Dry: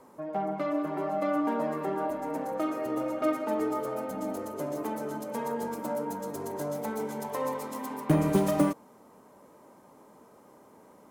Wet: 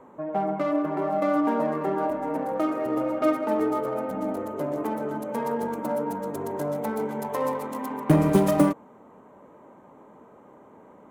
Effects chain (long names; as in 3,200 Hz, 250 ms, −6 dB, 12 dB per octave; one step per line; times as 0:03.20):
adaptive Wiener filter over 9 samples
level +5 dB